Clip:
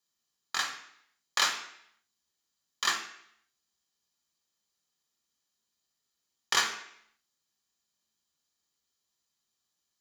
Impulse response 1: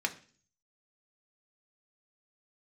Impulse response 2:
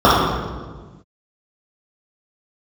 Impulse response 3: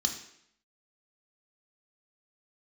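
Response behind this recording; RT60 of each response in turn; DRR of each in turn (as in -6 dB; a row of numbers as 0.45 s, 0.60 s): 3; 0.45 s, 1.4 s, 0.70 s; 3.5 dB, -9.5 dB, 3.0 dB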